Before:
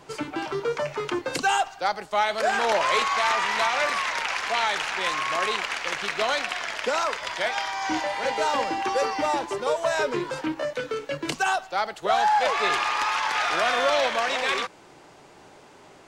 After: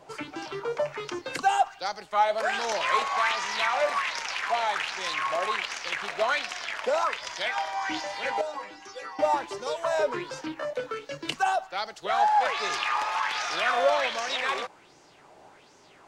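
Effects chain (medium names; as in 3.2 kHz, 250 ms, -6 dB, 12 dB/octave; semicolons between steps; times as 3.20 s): 8.41–9.19 s: inharmonic resonator 99 Hz, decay 0.26 s, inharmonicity 0.002; sweeping bell 1.3 Hz 600–6200 Hz +11 dB; trim -7 dB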